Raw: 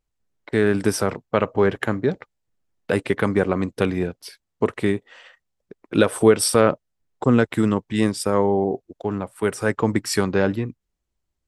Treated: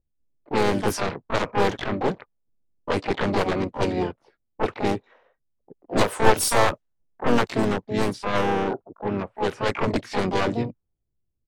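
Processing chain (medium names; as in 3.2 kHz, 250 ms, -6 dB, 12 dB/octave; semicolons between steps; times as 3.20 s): one-sided wavefolder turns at -16 dBFS; harmony voices -3 st -11 dB, +3 st -6 dB, +12 st -3 dB; level-controlled noise filter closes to 410 Hz, open at -13.5 dBFS; trim -3.5 dB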